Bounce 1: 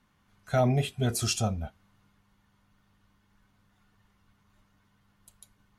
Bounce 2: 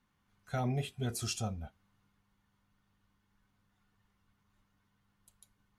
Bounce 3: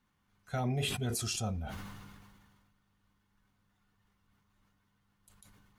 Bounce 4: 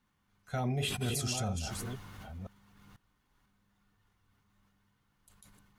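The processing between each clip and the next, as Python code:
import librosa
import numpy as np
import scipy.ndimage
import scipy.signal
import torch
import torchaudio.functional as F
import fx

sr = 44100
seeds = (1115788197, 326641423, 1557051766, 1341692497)

y1 = fx.notch(x, sr, hz=630.0, q=12.0)
y1 = y1 * librosa.db_to_amplitude(-8.0)
y2 = fx.sustainer(y1, sr, db_per_s=31.0)
y3 = fx.reverse_delay(y2, sr, ms=494, wet_db=-6.5)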